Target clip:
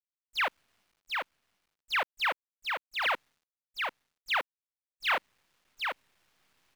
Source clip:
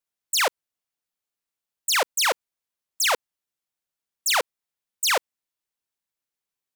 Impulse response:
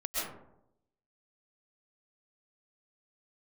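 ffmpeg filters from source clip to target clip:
-af "lowpass=frequency=3000:width=0.5412,lowpass=frequency=3000:width=1.3066,equalizer=frequency=450:width=1.2:gain=-10.5,areverse,acompressor=mode=upward:threshold=-42dB:ratio=2.5,areverse,acrusher=bits=8:dc=4:mix=0:aa=0.000001,aecho=1:1:742:0.631,volume=-4dB"

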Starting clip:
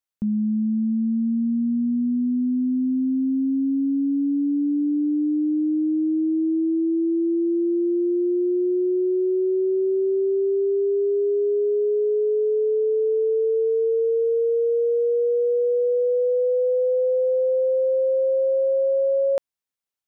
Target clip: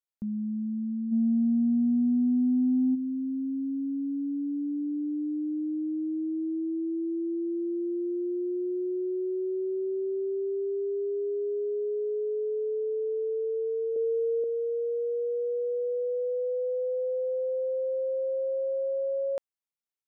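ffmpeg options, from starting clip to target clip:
ffmpeg -i in.wav -filter_complex "[0:a]asplit=3[link_01][link_02][link_03];[link_01]afade=type=out:start_time=1.11:duration=0.02[link_04];[link_02]acontrast=88,afade=type=in:start_time=1.11:duration=0.02,afade=type=out:start_time=2.94:duration=0.02[link_05];[link_03]afade=type=in:start_time=2.94:duration=0.02[link_06];[link_04][link_05][link_06]amix=inputs=3:normalize=0,asettb=1/sr,asplit=3[link_07][link_08][link_09];[link_07]atrim=end=13.964[link_10];[link_08]atrim=start=13.96:end=14.44,asetpts=PTS-STARTPTS,afade=type=in:duration=0.004:curve=qsin,afade=type=out:start_time=0.476:duration=0.004:curve=qsin,tiltshelf=frequency=650:gain=8[link_11];[link_09]atrim=start=14.436[link_12];[link_10][link_11]acrossfade=duration=0.004:curve1=hsin:curve2=qsin[link_13];[link_13][link_12]acrossfade=duration=0.004:curve1=qsin:curve2=hsin,volume=-9dB" out.wav

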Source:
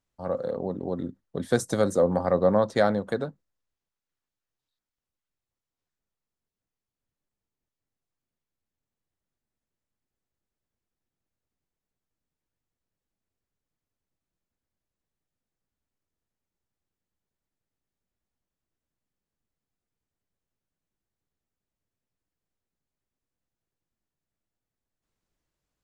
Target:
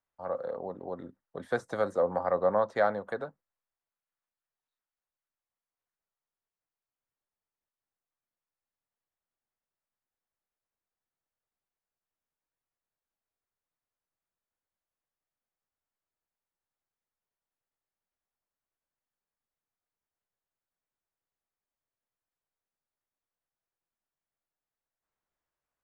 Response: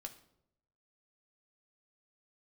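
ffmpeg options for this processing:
-filter_complex "[0:a]acrossover=split=5000[link_01][link_02];[link_02]acompressor=threshold=-48dB:ratio=4:attack=1:release=60[link_03];[link_01][link_03]amix=inputs=2:normalize=0,acrossover=split=550 2100:gain=0.2 1 0.224[link_04][link_05][link_06];[link_04][link_05][link_06]amix=inputs=3:normalize=0"

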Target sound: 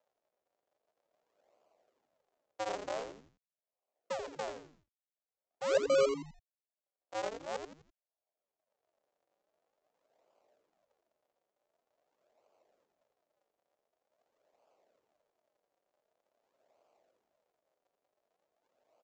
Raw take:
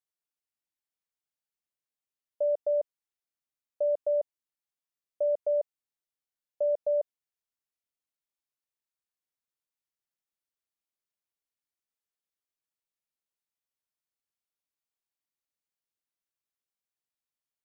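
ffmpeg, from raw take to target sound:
ffmpeg -i in.wav -filter_complex "[0:a]afwtdn=0.00891,acompressor=mode=upward:threshold=-35dB:ratio=2.5,asetrate=40881,aresample=44100,aresample=16000,acrusher=samples=42:mix=1:aa=0.000001:lfo=1:lforange=67.2:lforate=0.46,aresample=44100,highpass=frequency=620:width_type=q:width=4.9,asplit=2[link_01][link_02];[link_02]asplit=4[link_03][link_04][link_05][link_06];[link_03]adelay=84,afreqshift=-130,volume=-7dB[link_07];[link_04]adelay=168,afreqshift=-260,volume=-15.9dB[link_08];[link_05]adelay=252,afreqshift=-390,volume=-24.7dB[link_09];[link_06]adelay=336,afreqshift=-520,volume=-33.6dB[link_10];[link_07][link_08][link_09][link_10]amix=inputs=4:normalize=0[link_11];[link_01][link_11]amix=inputs=2:normalize=0,volume=-8dB" out.wav

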